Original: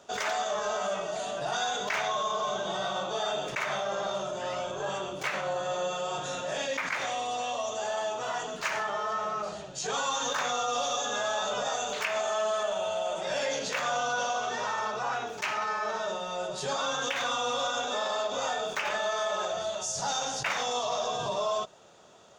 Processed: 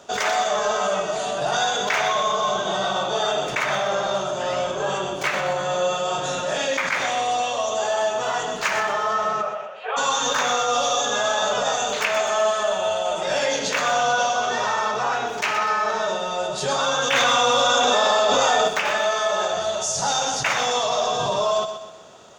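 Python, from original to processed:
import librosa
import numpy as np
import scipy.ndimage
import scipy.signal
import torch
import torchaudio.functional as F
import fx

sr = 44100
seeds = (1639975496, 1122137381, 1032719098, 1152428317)

p1 = fx.ellip_bandpass(x, sr, low_hz=500.0, high_hz=2700.0, order=3, stop_db=40, at=(9.41, 9.96), fade=0.02)
p2 = p1 + fx.echo_feedback(p1, sr, ms=124, feedback_pct=42, wet_db=-9.0, dry=0)
p3 = fx.env_flatten(p2, sr, amount_pct=100, at=(17.11, 18.67), fade=0.02)
y = p3 * 10.0 ** (8.0 / 20.0)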